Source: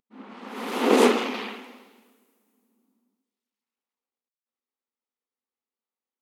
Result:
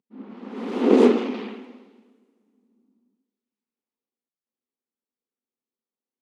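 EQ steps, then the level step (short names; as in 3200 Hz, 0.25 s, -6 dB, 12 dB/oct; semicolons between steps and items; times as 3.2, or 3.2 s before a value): BPF 110–6000 Hz; bell 160 Hz +11.5 dB 1.5 oct; bell 360 Hz +9 dB 1.5 oct; -7.5 dB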